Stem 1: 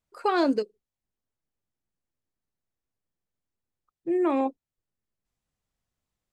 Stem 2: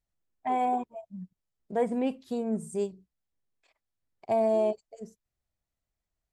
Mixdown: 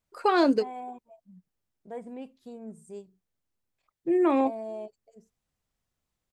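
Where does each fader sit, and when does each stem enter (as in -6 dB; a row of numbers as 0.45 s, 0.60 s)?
+1.5 dB, -12.0 dB; 0.00 s, 0.15 s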